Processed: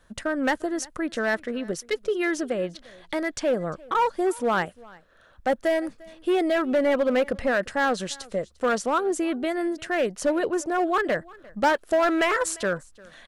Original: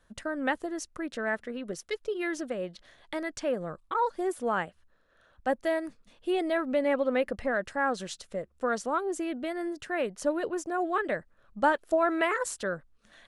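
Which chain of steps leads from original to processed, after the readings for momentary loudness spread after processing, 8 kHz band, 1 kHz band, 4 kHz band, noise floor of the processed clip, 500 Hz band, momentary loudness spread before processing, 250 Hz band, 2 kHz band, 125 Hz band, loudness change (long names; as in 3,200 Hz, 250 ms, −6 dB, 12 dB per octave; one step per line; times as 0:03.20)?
8 LU, +7.0 dB, +4.5 dB, +7.5 dB, −57 dBFS, +5.5 dB, 10 LU, +6.0 dB, +5.0 dB, +6.5 dB, +5.5 dB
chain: in parallel at −4 dB: wave folding −25 dBFS
on the sum: single-tap delay 349 ms −23.5 dB
level +2.5 dB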